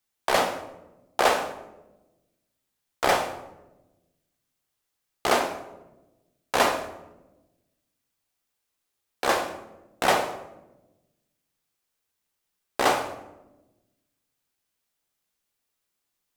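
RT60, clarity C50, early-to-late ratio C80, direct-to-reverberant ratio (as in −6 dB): 1.0 s, 9.5 dB, 12.0 dB, 5.0 dB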